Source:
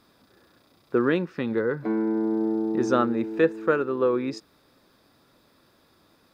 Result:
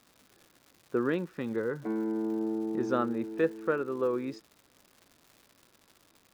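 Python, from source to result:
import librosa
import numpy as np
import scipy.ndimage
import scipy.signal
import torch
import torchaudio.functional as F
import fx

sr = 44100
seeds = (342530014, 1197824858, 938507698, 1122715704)

y = fx.high_shelf(x, sr, hz=5000.0, db=-9.5)
y = fx.dmg_crackle(y, sr, seeds[0], per_s=270.0, level_db=-39.0)
y = y * librosa.db_to_amplitude(-6.5)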